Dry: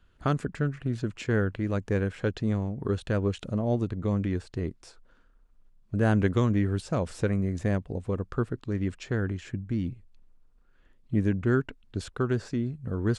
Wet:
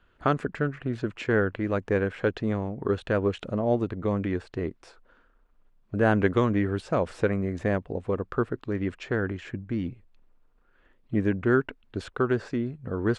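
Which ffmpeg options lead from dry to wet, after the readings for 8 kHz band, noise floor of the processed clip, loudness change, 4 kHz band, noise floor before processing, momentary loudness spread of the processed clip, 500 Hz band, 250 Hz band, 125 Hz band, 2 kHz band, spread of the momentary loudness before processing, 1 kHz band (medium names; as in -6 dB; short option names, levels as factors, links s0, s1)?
no reading, -63 dBFS, +1.5 dB, +0.5 dB, -61 dBFS, 8 LU, +4.5 dB, +1.0 dB, -3.0 dB, +5.0 dB, 7 LU, +5.5 dB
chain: -af "bass=f=250:g=-9,treble=f=4000:g=-13,volume=1.88"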